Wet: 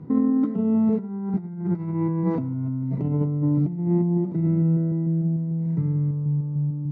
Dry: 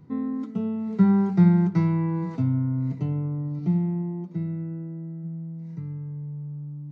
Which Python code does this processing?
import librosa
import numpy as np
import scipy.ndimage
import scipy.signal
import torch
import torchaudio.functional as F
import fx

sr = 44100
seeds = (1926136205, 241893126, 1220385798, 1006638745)

p1 = fx.reverse_delay(x, sr, ms=149, wet_db=-11.0)
p2 = fx.over_compress(p1, sr, threshold_db=-30.0, ratio=-1.0)
p3 = fx.bandpass_q(p2, sr, hz=340.0, q=0.5)
p4 = p3 + fx.echo_single(p3, sr, ms=105, db=-20.0, dry=0)
y = p4 * 10.0 ** (8.0 / 20.0)